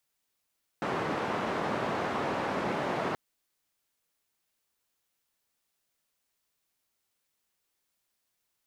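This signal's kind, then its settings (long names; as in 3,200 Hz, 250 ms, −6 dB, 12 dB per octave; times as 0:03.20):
band-limited noise 150–1,000 Hz, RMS −31.5 dBFS 2.33 s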